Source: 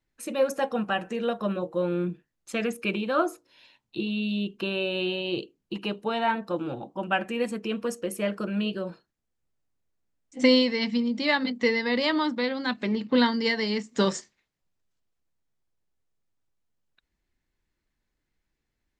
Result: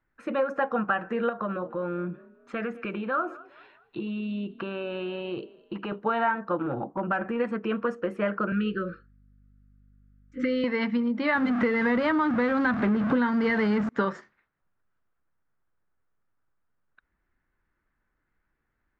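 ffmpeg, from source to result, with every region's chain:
-filter_complex "[0:a]asettb=1/sr,asplit=3[s0][s1][s2];[s0]atrim=end=1.294[s3];[s1]atrim=start=1.29:end=5.92,asetpts=PTS-STARTPTS,afade=t=in:d=0.004:c=qsin,afade=t=out:st=4.626:d=0.004:c=qsin,acompressor=threshold=0.0251:ratio=3:attack=3.2:release=140:knee=1:detection=peak,asplit=4[s4][s5][s6][s7];[s5]adelay=207,afreqshift=31,volume=0.0794[s8];[s6]adelay=414,afreqshift=62,volume=0.0327[s9];[s7]adelay=621,afreqshift=93,volume=0.0133[s10];[s4][s8][s9][s10]amix=inputs=4:normalize=0,atrim=end_sample=204183[s11];[s2]atrim=start=5.916[s12];[s3][s11]acrossfade=d=0.004:c1=hsin:c2=qsin[s13];[s13][s12]acrossfade=d=0.004:c1=qsin:c2=hsin,asettb=1/sr,asplit=3[s14][s15][s16];[s14]atrim=end=6.624[s17];[s15]atrim=start=6.62:end=7.4,asetpts=PTS-STARTPTS,afade=t=in:d=0.004:c=qsin,afade=t=out:st=0.776:d=0.004:c=qsin,tiltshelf=f=1200:g=4,acompressor=threshold=0.0355:ratio=2.5:attack=3.2:release=140:knee=1:detection=peak,asoftclip=type=hard:threshold=0.0531[s18];[s16]atrim=start=7.396[s19];[s17][s18]acrossfade=d=0.004:c1=hsin:c2=qsin[s20];[s20][s19]acrossfade=d=0.004:c1=qsin:c2=hsin,asettb=1/sr,asplit=3[s21][s22][s23];[s21]atrim=end=8.524[s24];[s22]atrim=start=8.52:end=10.64,asetpts=PTS-STARTPTS,afade=t=in:d=0.004:c=qsin,afade=t=out:st=2.116:d=0.004:c=qsin,acompressor=threshold=0.0794:ratio=6:attack=3.2:release=140:knee=1:detection=peak,aeval=exprs='val(0)+0.00112*(sin(2*PI*50*n/s)+sin(2*PI*2*50*n/s)/2+sin(2*PI*3*50*n/s)/3+sin(2*PI*4*50*n/s)/4+sin(2*PI*5*50*n/s)/5)':c=same,asuperstop=centerf=800:order=20:qfactor=1.3[s25];[s23]atrim=start=10.636[s26];[s24][s25]acrossfade=d=0.004:c1=hsin:c2=qsin[s27];[s27][s26]acrossfade=d=0.004:c1=qsin:c2=hsin,asettb=1/sr,asplit=3[s28][s29][s30];[s28]atrim=end=11.354[s31];[s29]atrim=start=11.35:end=13.89,asetpts=PTS-STARTPTS,afade=t=in:d=0.004:c=qsin,afade=t=out:st=2.536:d=0.004:c=qsin,aeval=exprs='val(0)+0.5*0.0531*sgn(val(0))':c=same,highpass=79,lowshelf=f=260:g=11[s32];[s30]atrim=start=13.886[s33];[s31][s32]acrossfade=d=0.004:c1=hsin:c2=qsin[s34];[s34][s33]acrossfade=d=0.004:c1=qsin:c2=hsin,lowpass=1800,equalizer=f=1400:t=o:w=0.96:g=11.5,acompressor=threshold=0.0631:ratio=6,volume=1.26"

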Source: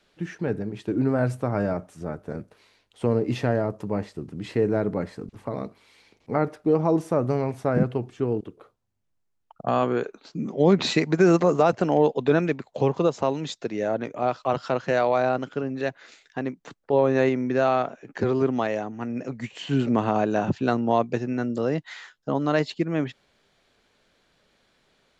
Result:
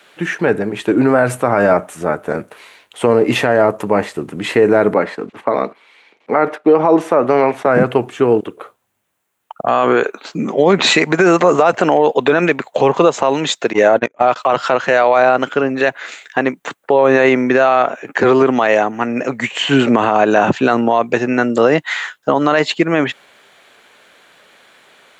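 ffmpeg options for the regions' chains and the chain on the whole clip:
-filter_complex "[0:a]asettb=1/sr,asplit=3[s0][s1][s2];[s0]atrim=end=4.944[s3];[s1]atrim=start=4.94:end=7.66,asetpts=PTS-STARTPTS,afade=t=in:d=0.004:c=qsin,afade=t=out:st=2.716:d=0.004:c=qsin,agate=range=0.355:threshold=0.00355:ratio=16:release=100:detection=peak,acrossover=split=180 5300:gain=0.251 1 0.178[s4][s5][s6];[s4][s5][s6]amix=inputs=3:normalize=0[s7];[s2]atrim=start=7.656[s8];[s3][s7]acrossfade=d=0.004:c1=hsin:c2=qsin[s9];[s9][s8]acrossfade=d=0.004:c1=qsin:c2=hsin,asettb=1/sr,asplit=3[s10][s11][s12];[s10]atrim=end=13.734[s13];[s11]atrim=start=13.73:end=14.36,asetpts=PTS-STARTPTS,afade=t=in:d=0.004:c=qsin,afade=t=out:st=0.626:d=0.004:c=qsin,agate=range=0.0126:threshold=0.0355:ratio=16:release=100:detection=peak,acontrast=65[s14];[s12]atrim=start=14.356[s15];[s13][s14]acrossfade=d=0.004:c1=hsin:c2=qsin[s16];[s16][s15]acrossfade=d=0.004:c1=qsin:c2=hsin,highpass=f=1000:p=1,equalizer=f=5000:w=1.5:g=-11,alimiter=level_in=15:limit=0.891:release=50:level=0:latency=1,volume=0.891"

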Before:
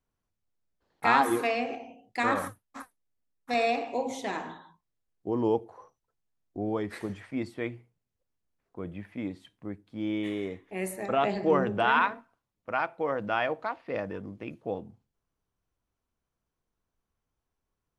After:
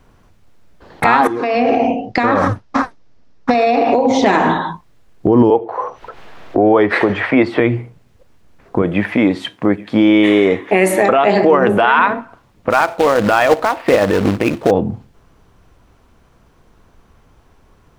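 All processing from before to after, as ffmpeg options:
-filter_complex "[0:a]asettb=1/sr,asplit=3[s0][s1][s2];[s0]atrim=end=1.274[s3];[s1]atrim=start=1.27:end=4.26,asetpts=PTS-STARTPTS,afade=t=in:d=0.004:c=qsin,afade=t=out:st=2.986:d=0.004:c=qsin,acompressor=threshold=0.0112:ratio=12:attack=3.2:release=140:knee=1:detection=peak,lowpass=f=5400:t=q:w=2.7,highshelf=f=2000:g=-9[s4];[s2]atrim=start=4.256[s5];[s3][s4]acrossfade=d=0.004:c1=hsin:c2=qsin[s6];[s6][s5]acrossfade=d=0.004:c1=qsin:c2=hsin,asettb=1/sr,asplit=3[s7][s8][s9];[s7]atrim=end=5.504[s10];[s8]atrim=start=5.5:end=7.6,asetpts=PTS-STARTPTS,afade=t=in:d=0.004:c=qsin,afade=t=out:st=2.096:d=0.004:c=qsin,acrossover=split=370 4000:gain=0.2 1 0.141[s11][s12][s13];[s11][s12][s13]amix=inputs=3:normalize=0,acompressor=mode=upward:threshold=0.00398:ratio=2.5:attack=3.2:release=140:knee=2.83:detection=peak[s14];[s9]atrim=start=7.596[s15];[s10][s14]acrossfade=d=0.004:c1=hsin:c2=qsin[s16];[s16][s15]acrossfade=d=0.004:c1=qsin:c2=hsin,asettb=1/sr,asplit=3[s17][s18][s19];[s17]atrim=end=8.824[s20];[s18]atrim=start=8.82:end=11.99,asetpts=PTS-STARTPTS,afade=t=in:d=0.004:c=qsin,afade=t=out:st=3.166:d=0.004:c=qsin,highpass=f=450:p=1,aecho=1:1:830:0.0794,atrim=end_sample=139797[s21];[s19]atrim=start=11.986[s22];[s20][s21]acrossfade=d=0.004:c1=hsin:c2=qsin[s23];[s23][s22]acrossfade=d=0.004:c1=qsin:c2=hsin,asettb=1/sr,asplit=3[s24][s25][s26];[s24]atrim=end=12.704[s27];[s25]atrim=start=12.7:end=14.71,asetpts=PTS-STARTPTS,afade=t=in:d=0.004:c=qsin,afade=t=out:st=2.006:d=0.004:c=qsin,equalizer=f=150:w=0.93:g=-7,acrusher=bits=2:mode=log:mix=0:aa=0.000001[s28];[s26]atrim=start=14.706[s29];[s27][s28]acrossfade=d=0.004:c1=hsin:c2=qsin[s30];[s30][s29]acrossfade=d=0.004:c1=qsin:c2=hsin,lowpass=f=2500:p=1,acompressor=threshold=0.00631:ratio=2.5,alimiter=level_in=56.2:limit=0.891:release=50:level=0:latency=1,volume=0.891"

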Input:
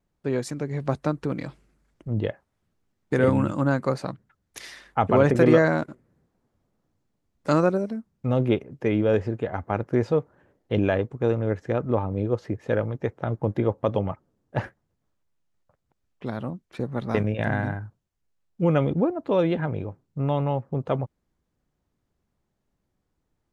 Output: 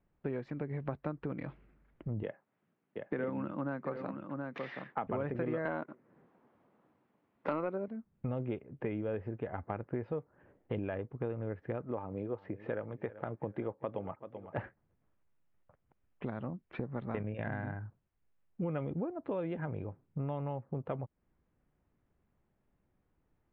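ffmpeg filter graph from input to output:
-filter_complex "[0:a]asettb=1/sr,asplit=3[s0][s1][s2];[s0]atrim=end=2.234[s3];[s1]atrim=start=2.23:end=5.07,asetpts=PTS-STARTPTS,afade=t=in:d=0.004:c=qsin,afade=t=out:st=2.836:d=0.004:c=qsin,highpass=f=150:w=0.5412,highpass=f=150:w=1.3066,aecho=1:1:726:0.237,atrim=end_sample=125244[s4];[s2]atrim=start=5.066[s5];[s3][s4]acrossfade=d=0.004:c1=hsin:c2=qsin[s6];[s6][s5]acrossfade=d=0.004:c1=qsin:c2=hsin,asettb=1/sr,asplit=3[s7][s8][s9];[s7]atrim=end=5.654[s10];[s8]atrim=start=5.65:end=7.88,asetpts=PTS-STARTPTS,afade=t=in:d=0.004:c=qsin,afade=t=out:st=2.226:d=0.004:c=qsin,highpass=220,equalizer=f=1000:w=2:g=4,acontrast=82[s11];[s9]atrim=start=7.876[s12];[s10][s11]acrossfade=d=0.004:c1=hsin:c2=qsin[s13];[s13][s12]acrossfade=d=0.004:c1=qsin:c2=hsin,asettb=1/sr,asplit=3[s14][s15][s16];[s14]atrim=end=11.824[s17];[s15]atrim=start=11.82:end=14.58,asetpts=PTS-STARTPTS,afade=t=in:d=0.004:c=qsin,afade=t=out:st=2.756:d=0.004:c=qsin,highpass=f=240:p=1,aecho=1:1:385|770:0.1|0.031,atrim=end_sample=121716[s18];[s16]atrim=start=14.576[s19];[s17][s18]acrossfade=d=0.004:c1=hsin:c2=qsin[s20];[s20][s19]acrossfade=d=0.004:c1=qsin:c2=hsin,lowpass=f=2700:w=0.5412,lowpass=f=2700:w=1.3066,acompressor=threshold=0.0158:ratio=4"

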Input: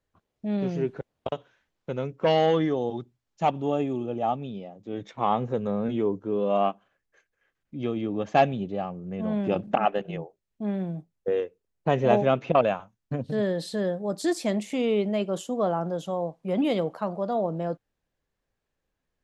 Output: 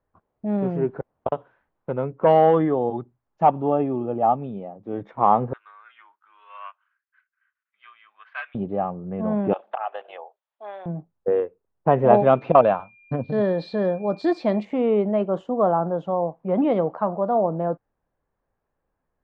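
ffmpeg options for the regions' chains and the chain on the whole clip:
-filter_complex "[0:a]asettb=1/sr,asplit=3[s0][s1][s2];[s0]atrim=end=5.534[s3];[s1]atrim=start=5.53:end=8.55,asetpts=PTS-STARTPTS,afade=t=in:d=0.004:c=qsin,afade=t=out:st=3.016:d=0.004:c=qsin,asuperpass=centerf=2600:order=8:qfactor=0.81,afreqshift=-83[s4];[s2]atrim=start=8.546[s5];[s3][s4]acrossfade=d=0.004:c1=hsin:c2=qsin[s6];[s6][s5]acrossfade=d=0.004:c1=qsin:c2=hsin,asettb=1/sr,asplit=3[s7][s8][s9];[s7]atrim=end=9.534[s10];[s8]atrim=start=9.53:end=10.86,asetpts=PTS-STARTPTS,afade=t=in:d=0.004:c=qsin,afade=t=out:st=1.326:d=0.004:c=qsin,highpass=f=630:w=0.5412,highpass=f=630:w=1.3066,equalizer=f=3500:t=o:w=0.71:g=12.5,acompressor=threshold=0.0282:ratio=5:attack=3.2:release=140:knee=1:detection=peak[s11];[s9]atrim=start=10.856[s12];[s10][s11]acrossfade=d=0.004:c1=hsin:c2=qsin[s13];[s13][s12]acrossfade=d=0.004:c1=qsin:c2=hsin,asettb=1/sr,asplit=3[s14][s15][s16];[s14]atrim=end=12.144[s17];[s15]atrim=start=12.14:end=14.65,asetpts=PTS-STARTPTS,afade=t=in:d=0.004:c=qsin,afade=t=out:st=2.506:d=0.004:c=qsin,equalizer=f=4300:t=o:w=0.66:g=14.5,aeval=exprs='val(0)+0.00501*sin(2*PI*2400*n/s)':c=same[s18];[s16]atrim=start=14.646[s19];[s17][s18]acrossfade=d=0.004:c1=hsin:c2=qsin[s20];[s20][s19]acrossfade=d=0.004:c1=qsin:c2=hsin,lowpass=1400,equalizer=f=960:w=1:g=6,volume=1.41"

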